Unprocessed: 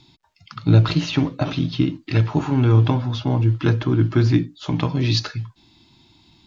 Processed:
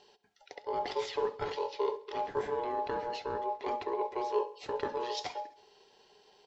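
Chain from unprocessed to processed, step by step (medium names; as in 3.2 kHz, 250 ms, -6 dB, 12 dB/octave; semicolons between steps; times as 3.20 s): bass shelf 390 Hz -8.5 dB; reverse; compression 6:1, threshold -28 dBFS, peak gain reduction 13 dB; reverse; ring modulator 720 Hz; small resonant body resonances 420/750 Hz, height 15 dB, ringing for 45 ms; short-mantissa float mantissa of 8-bit; on a send: feedback delay 67 ms, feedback 56%, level -19 dB; on the sum: trim -6 dB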